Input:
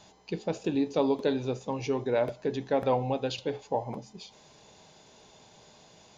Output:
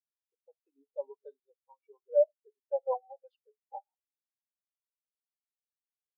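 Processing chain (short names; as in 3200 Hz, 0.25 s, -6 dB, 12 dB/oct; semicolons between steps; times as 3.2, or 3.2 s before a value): HPF 790 Hz 12 dB/oct; spectral expander 4:1; gain +3.5 dB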